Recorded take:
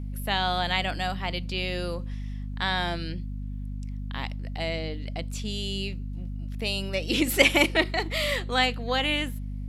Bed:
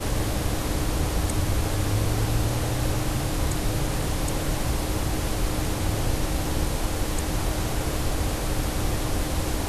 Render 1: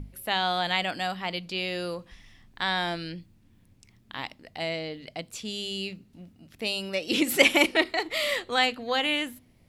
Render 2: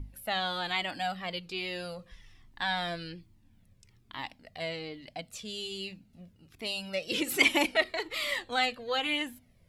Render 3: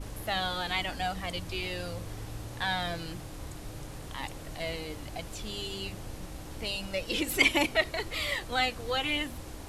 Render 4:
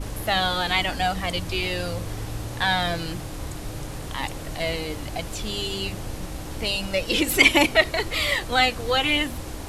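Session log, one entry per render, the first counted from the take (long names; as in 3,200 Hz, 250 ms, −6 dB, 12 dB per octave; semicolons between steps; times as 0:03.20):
mains-hum notches 50/100/150/200/250 Hz
flanger whose copies keep moving one way falling 1.2 Hz
mix in bed −16.5 dB
level +8.5 dB; brickwall limiter −2 dBFS, peak gain reduction 2 dB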